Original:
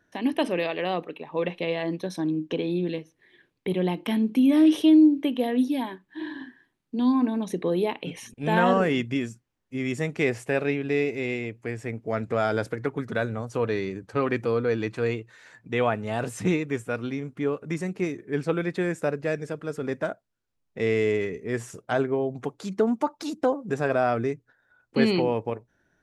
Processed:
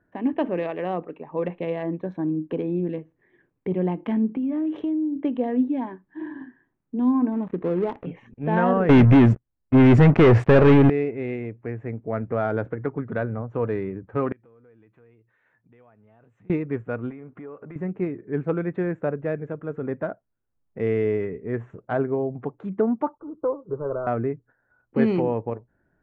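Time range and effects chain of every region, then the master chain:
0:04.31–0:05.16: mains-hum notches 50/100/150/200/250 Hz + downward compressor, threshold −24 dBFS
0:07.32–0:08.06: gap after every zero crossing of 0.18 ms + high-shelf EQ 8,800 Hz −6.5 dB
0:08.89–0:10.90: low-shelf EQ 88 Hz +11.5 dB + leveller curve on the samples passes 5
0:14.32–0:16.50: downward compressor 3 to 1, threshold −44 dBFS + first-order pre-emphasis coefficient 0.8
0:17.10–0:17.76: downward compressor, threshold −38 dBFS + mid-hump overdrive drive 13 dB, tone 3,200 Hz, clips at −26 dBFS
0:23.15–0:24.07: variable-slope delta modulation 64 kbit/s + Butterworth low-pass 1,600 Hz 96 dB per octave + phaser with its sweep stopped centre 1,100 Hz, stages 8
whole clip: adaptive Wiener filter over 9 samples; low-pass filter 1,700 Hz 12 dB per octave; low-shelf EQ 190 Hz +4 dB

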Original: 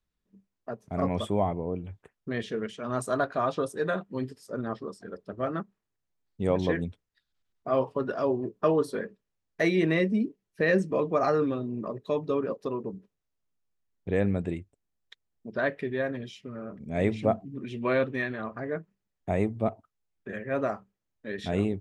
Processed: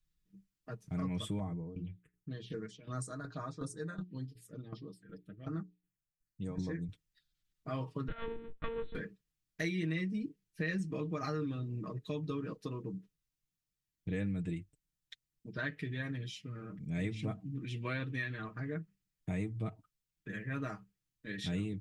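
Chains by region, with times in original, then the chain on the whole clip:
0:01.39–0:06.89: mains-hum notches 60/120/180/240/300/360/420 Hz + shaped tremolo saw down 2.7 Hz, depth 75% + phaser swept by the level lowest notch 540 Hz, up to 3,000 Hz, full sweep at −31 dBFS
0:08.08–0:08.95: gain on one half-wave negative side −12 dB + one-pitch LPC vocoder at 8 kHz 230 Hz
whole clip: guitar amp tone stack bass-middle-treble 6-0-2; comb filter 6.4 ms, depth 70%; downward compressor 3 to 1, threshold −49 dBFS; level +14.5 dB

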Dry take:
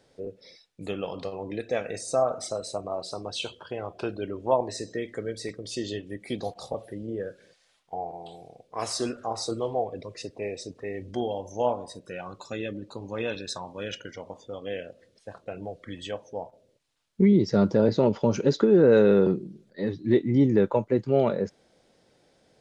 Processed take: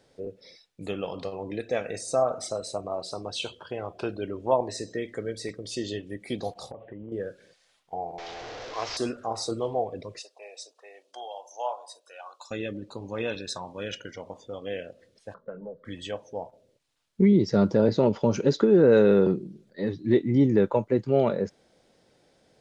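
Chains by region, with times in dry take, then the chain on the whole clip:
0:06.71–0:07.12: Butterworth low-pass 3,000 Hz 48 dB per octave + downward compressor 12 to 1, threshold −36 dBFS
0:08.18–0:08.97: linear delta modulator 32 kbit/s, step −32 dBFS + parametric band 180 Hz −14.5 dB 0.89 octaves
0:10.19–0:12.51: high-pass filter 710 Hz 24 dB per octave + parametric band 2,000 Hz −12.5 dB 0.64 octaves
0:15.34–0:15.85: low-pass filter 1,800 Hz + phaser with its sweep stopped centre 490 Hz, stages 8
whole clip: no processing

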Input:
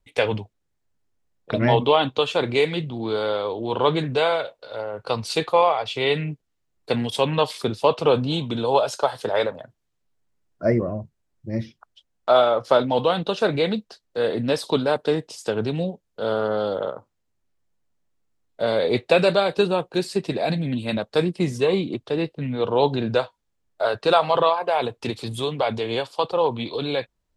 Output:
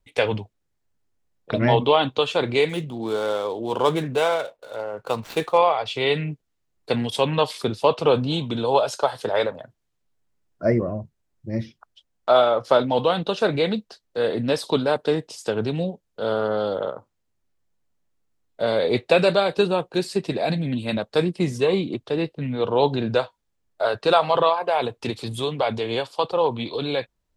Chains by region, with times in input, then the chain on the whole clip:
0:02.69–0:05.58: running median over 9 samples + parametric band 91 Hz −6 dB 1.1 octaves
whole clip: no processing

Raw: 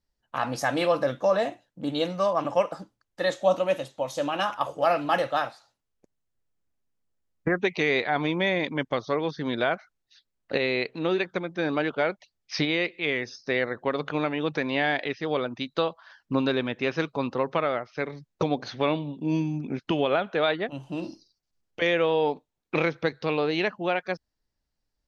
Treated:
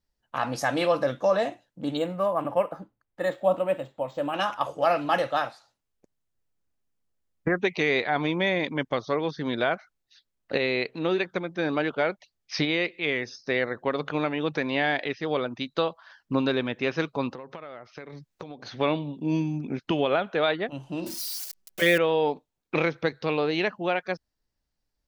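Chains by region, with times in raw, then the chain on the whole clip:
0:01.97–0:04.34: high-frequency loss of the air 290 metres + linearly interpolated sample-rate reduction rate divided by 4×
0:17.34–0:18.76: downward compressor 8 to 1, threshold −36 dBFS + one half of a high-frequency compander encoder only
0:21.06–0:21.98: spike at every zero crossing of −28.5 dBFS + comb filter 5.3 ms, depth 96%
whole clip: no processing

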